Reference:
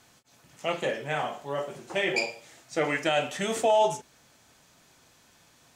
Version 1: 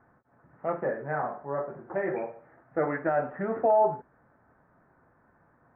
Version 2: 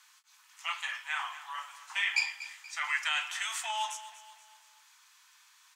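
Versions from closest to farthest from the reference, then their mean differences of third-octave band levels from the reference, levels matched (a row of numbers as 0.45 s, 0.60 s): 1, 2; 8.0 dB, 13.0 dB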